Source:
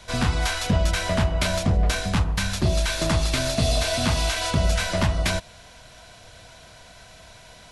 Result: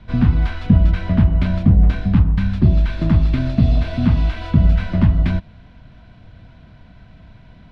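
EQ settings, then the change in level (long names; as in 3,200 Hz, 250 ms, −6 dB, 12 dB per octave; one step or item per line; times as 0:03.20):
high-frequency loss of the air 370 metres
low shelf with overshoot 350 Hz +10.5 dB, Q 1.5
−2.0 dB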